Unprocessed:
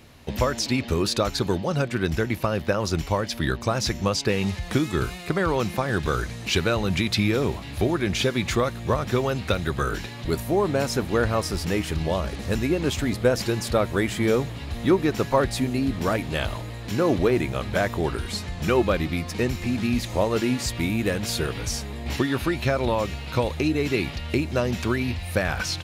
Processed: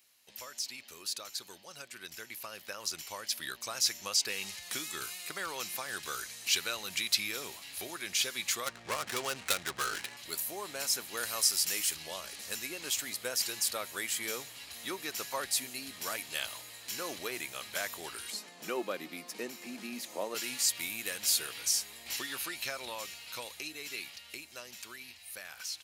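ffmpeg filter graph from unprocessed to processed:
-filter_complex "[0:a]asettb=1/sr,asplit=3[s0][s1][s2];[s0]atrim=end=8.664[s3];[s1]atrim=start=8.66:end=10.17,asetpts=PTS-STARTPTS,afade=t=in:d=0.004:c=qsin,afade=t=out:st=1.506:d=0.004:c=qsin,adynamicsmooth=sensitivity=7:basefreq=690,aeval=exprs='0.299*sin(PI/2*1.41*val(0)/0.299)':c=same[s4];[s2]atrim=start=10.166[s5];[s3][s4]acrossfade=d=0.004:c1=hsin:c2=qsin[s6];[s6][s5]acrossfade=d=0.004:c1=qsin:c2=hsin,asettb=1/sr,asplit=3[s7][s8][s9];[s7]atrim=end=11.174[s10];[s8]atrim=start=11.17:end=11.95,asetpts=PTS-STARTPTS,afade=t=in:d=0.004:c=qsin,afade=t=out:st=0.776:d=0.004:c=qsin,aemphasis=mode=production:type=50fm,acrossover=split=8600[s11][s12];[s12]acompressor=threshold=0.00708:ratio=4:attack=1:release=60[s13];[s11][s13]amix=inputs=2:normalize=0[s14];[s9]atrim=start=11.946[s15];[s10][s14]acrossfade=d=0.004:c1=hsin:c2=qsin[s16];[s16][s15]acrossfade=d=0.004:c1=qsin:c2=hsin,asettb=1/sr,asplit=3[s17][s18][s19];[s17]atrim=end=18.304[s20];[s18]atrim=start=18.3:end=20.35,asetpts=PTS-STARTPTS,afade=t=in:d=0.004:c=qsin,afade=t=out:st=2.046:d=0.004:c=qsin,highpass=f=200:w=0.5412,highpass=f=200:w=1.3066,tiltshelf=f=1100:g=9[s21];[s19]atrim=start=20.346[s22];[s20][s21]acrossfade=d=0.004:c1=hsin:c2=qsin[s23];[s23][s22]acrossfade=d=0.004:c1=qsin:c2=hsin,aderivative,bandreject=f=3600:w=23,dynaudnorm=f=330:g=17:m=3.16,volume=0.473"

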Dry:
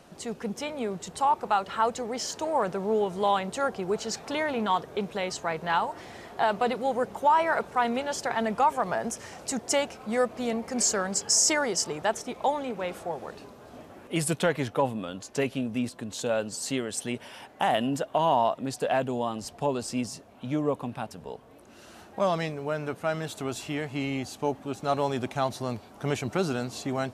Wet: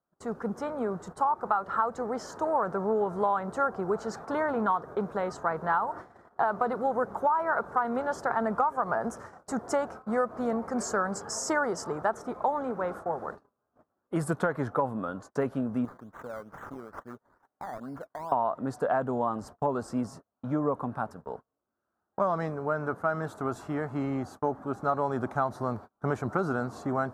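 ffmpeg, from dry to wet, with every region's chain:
-filter_complex "[0:a]asettb=1/sr,asplit=3[s0][s1][s2];[s0]atrim=end=15.854[s3];[s1]atrim=start=15.85:end=18.32,asetpts=PTS-STARTPTS,afade=t=in:d=0.004:c=qsin,afade=t=out:st=2.466:d=0.004:c=qsin,acrusher=samples=13:mix=1:aa=0.000001:lfo=1:lforange=7.8:lforate=2.3,acompressor=threshold=0.0112:ratio=4:attack=3.2:release=140:knee=1:detection=peak[s4];[s2]atrim=start=18.316[s5];[s3][s4]acrossfade=d=0.004:c1=hsin:c2=qsin[s6];[s6][s5]acrossfade=d=0.004:c1=qsin:c2=hsin,agate=range=0.0178:threshold=0.00891:ratio=16:detection=peak,highshelf=f=1900:t=q:w=3:g=-12,acompressor=threshold=0.0794:ratio=10"

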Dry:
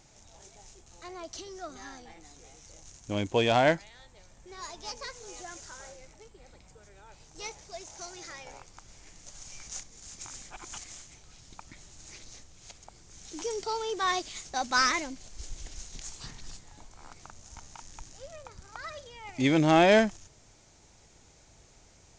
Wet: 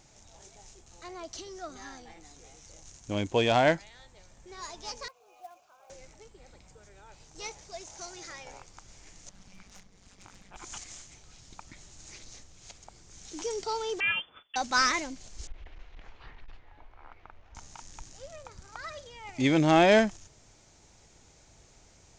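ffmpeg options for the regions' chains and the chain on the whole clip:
-filter_complex "[0:a]asettb=1/sr,asplit=3[s0][s1][s2];[s0]atrim=end=5.084[s3];[s1]atrim=start=5.08:end=5.9,asetpts=PTS-STARTPTS,afade=t=in:d=0.004:c=qsin,afade=t=out:st=0.816:d=0.004:c=qsin,aeval=exprs='val(0)+0.5*0.0015*sgn(val(0))':c=same,asplit=3[s4][s5][s6];[s4]bandpass=f=730:t=q:w=8,volume=1[s7];[s5]bandpass=f=1090:t=q:w=8,volume=0.501[s8];[s6]bandpass=f=2440:t=q:w=8,volume=0.355[s9];[s7][s8][s9]amix=inputs=3:normalize=0,acrusher=bits=4:mode=log:mix=0:aa=0.000001[s10];[s2]atrim=start=5.896[s11];[s3][s10]acrossfade=d=0.004:c1=hsin:c2=qsin[s12];[s12][s11]acrossfade=d=0.004:c1=qsin:c2=hsin,asettb=1/sr,asplit=3[s13][s14][s15];[s13]atrim=end=9.294[s16];[s14]atrim=start=9.29:end=10.56,asetpts=PTS-STARTPTS,afade=t=in:d=0.004:c=qsin,afade=t=out:st=1.266:d=0.004:c=qsin,tremolo=f=190:d=0.788,equalizer=f=7100:w=0.94:g=-13.5,aeval=exprs='clip(val(0),-1,0.00668)':c=same[s17];[s15]atrim=start=10.556[s18];[s16][s17]acrossfade=d=0.004:c1=hsin:c2=qsin[s19];[s19][s18]acrossfade=d=0.004:c1=qsin:c2=hsin,asettb=1/sr,asplit=3[s20][s21][s22];[s20]atrim=end=14.004[s23];[s21]atrim=start=14:end=14.56,asetpts=PTS-STARTPTS,afade=t=in:d=0.004:c=qsin,afade=t=out:st=0.556:d=0.004:c=qsin,equalizer=f=94:t=o:w=0.53:g=-13.5,lowpass=f=3000:t=q:w=0.5098,lowpass=f=3000:t=q:w=0.6013,lowpass=f=3000:t=q:w=0.9,lowpass=f=3000:t=q:w=2.563,afreqshift=-3500,agate=range=0.0224:threshold=0.00794:ratio=3:release=100:detection=peak[s24];[s22]atrim=start=14.556[s25];[s23][s24]acrossfade=d=0.004:c1=hsin:c2=qsin[s26];[s26][s25]acrossfade=d=0.004:c1=qsin:c2=hsin,asettb=1/sr,asplit=3[s27][s28][s29];[s27]atrim=end=15.474[s30];[s28]atrim=start=15.47:end=17.55,asetpts=PTS-STARTPTS,afade=t=in:d=0.004:c=qsin,afade=t=out:st=2.076:d=0.004:c=qsin,equalizer=f=170:w=1.1:g=-14,aeval=exprs='clip(val(0),-1,0.00841)':c=same,lowpass=f=2700:w=0.5412,lowpass=f=2700:w=1.3066[s31];[s29]atrim=start=17.546[s32];[s30][s31]acrossfade=d=0.004:c1=hsin:c2=qsin[s33];[s33][s32]acrossfade=d=0.004:c1=qsin:c2=hsin"

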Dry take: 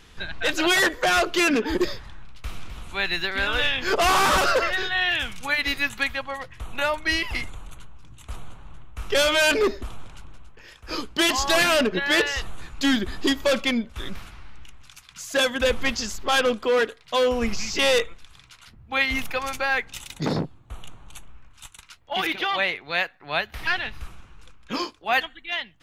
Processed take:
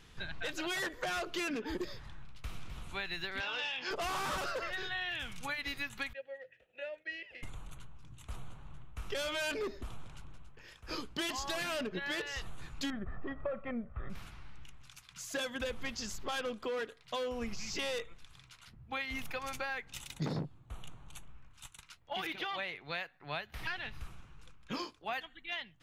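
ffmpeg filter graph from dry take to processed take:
-filter_complex "[0:a]asettb=1/sr,asplit=3[s0][s1][s2];[s0]atrim=end=3.404[s3];[s1]atrim=start=3.4:end=3.91,asetpts=PTS-STARTPTS,afade=t=in:d=0.004:c=qsin,afade=t=out:st=0.506:d=0.004:c=qsin,volume=7.94,asoftclip=hard,volume=0.126,highpass=260,equalizer=f=300:t=q:w=4:g=-4,equalizer=f=860:t=q:w=4:g=7,equalizer=f=2800:t=q:w=4:g=8,equalizer=f=5300:t=q:w=4:g=8,lowpass=f=6200:w=0.5412,lowpass=f=6200:w=1.3066,asplit=2[s4][s5];[s5]adelay=16,volume=0.282[s6];[s4][s6]amix=inputs=2:normalize=0,atrim=end_sample=22491[s7];[s2]atrim=start=3.906[s8];[s3][s7]acrossfade=d=0.004:c1=hsin:c2=qsin[s9];[s9][s8]acrossfade=d=0.004:c1=qsin:c2=hsin,asettb=1/sr,asplit=3[s10][s11][s12];[s10]atrim=end=6.134[s13];[s11]atrim=start=6.13:end=7.43,asetpts=PTS-STARTPTS,afade=t=in:d=0.004:c=qsin,afade=t=out:st=1.296:d=0.004:c=qsin,acompressor=mode=upward:threshold=0.0316:ratio=2.5:attack=3.2:release=140:knee=2.83:detection=peak,asplit=3[s14][s15][s16];[s14]bandpass=f=530:t=q:w=8,volume=1[s17];[s15]bandpass=f=1840:t=q:w=8,volume=0.501[s18];[s16]bandpass=f=2480:t=q:w=8,volume=0.355[s19];[s17][s18][s19]amix=inputs=3:normalize=0,agate=range=0.0224:threshold=0.00251:ratio=3:release=100:detection=peak[s20];[s12]atrim=start=7.426[s21];[s13][s20]acrossfade=d=0.004:c1=hsin:c2=qsin[s22];[s22][s21]acrossfade=d=0.004:c1=qsin:c2=hsin,asettb=1/sr,asplit=3[s23][s24][s25];[s23]atrim=end=12.904[s26];[s24]atrim=start=12.9:end=14.1,asetpts=PTS-STARTPTS,afade=t=in:d=0.004:c=qsin,afade=t=out:st=1.196:d=0.004:c=qsin,lowpass=f=1700:w=0.5412,lowpass=f=1700:w=1.3066,aecho=1:1:1.6:0.56,atrim=end_sample=52920[s27];[s25]atrim=start=14.096[s28];[s26][s27]acrossfade=d=0.004:c1=hsin:c2=qsin[s29];[s29][s28]acrossfade=d=0.004:c1=qsin:c2=hsin,acompressor=threshold=0.0447:ratio=6,equalizer=f=140:w=2.4:g=6.5,volume=0.398"

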